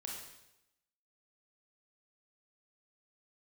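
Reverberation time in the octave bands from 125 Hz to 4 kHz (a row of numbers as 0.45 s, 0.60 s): 0.90 s, 0.90 s, 0.90 s, 0.85 s, 0.85 s, 0.85 s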